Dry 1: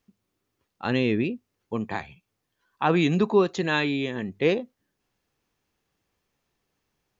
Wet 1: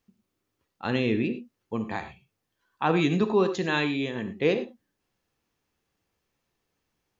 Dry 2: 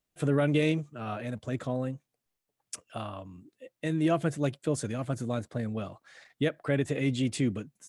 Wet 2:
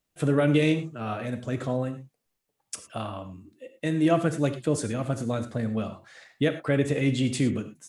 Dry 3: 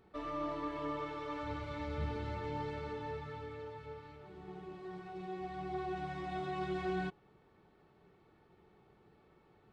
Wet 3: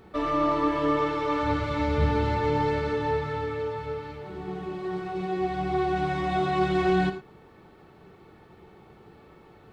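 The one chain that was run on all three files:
gated-style reverb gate 130 ms flat, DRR 8.5 dB; normalise loudness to -27 LUFS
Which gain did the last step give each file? -2.0 dB, +3.5 dB, +13.0 dB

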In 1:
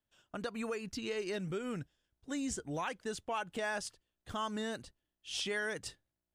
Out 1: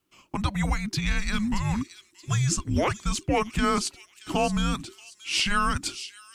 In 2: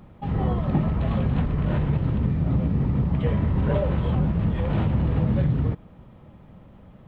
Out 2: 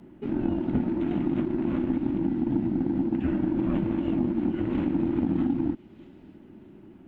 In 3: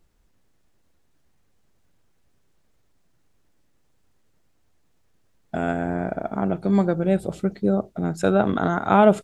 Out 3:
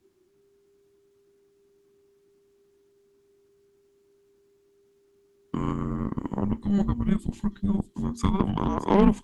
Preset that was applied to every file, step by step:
frequency shift -400 Hz; feedback echo behind a high-pass 627 ms, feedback 33%, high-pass 3.7 kHz, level -9 dB; in parallel at +2.5 dB: compression, threshold -30 dBFS; on the sum: Chebyshev shaper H 5 -26 dB, 7 -21 dB, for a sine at -1 dBFS; normalise loudness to -27 LUFS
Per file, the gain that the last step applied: +9.5 dB, -4.5 dB, -4.5 dB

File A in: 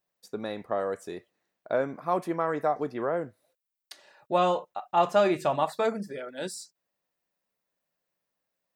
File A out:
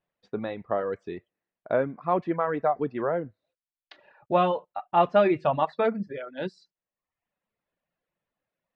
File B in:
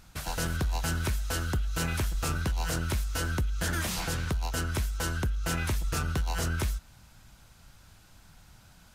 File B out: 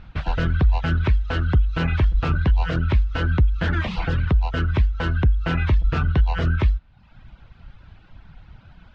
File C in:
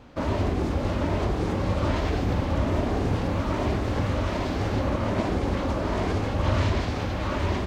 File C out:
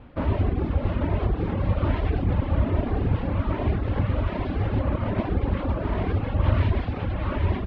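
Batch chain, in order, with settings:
low-pass 3.3 kHz 24 dB/octave; reverb removal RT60 0.81 s; bass shelf 160 Hz +8 dB; peak normalisation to -9 dBFS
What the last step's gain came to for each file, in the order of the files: +2.0 dB, +7.0 dB, -1.0 dB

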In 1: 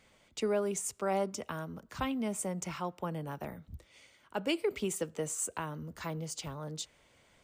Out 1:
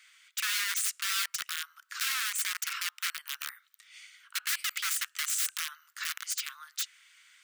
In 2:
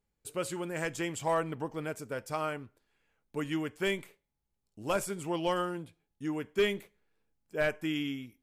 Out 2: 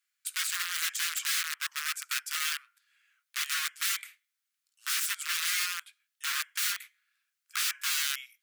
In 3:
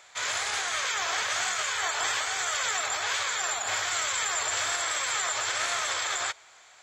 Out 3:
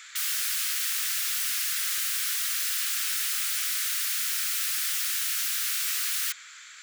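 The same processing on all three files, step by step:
integer overflow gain 32 dB; steep high-pass 1.3 kHz 48 dB/octave; trim +8.5 dB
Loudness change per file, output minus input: +4.5 LU, +4.0 LU, +2.0 LU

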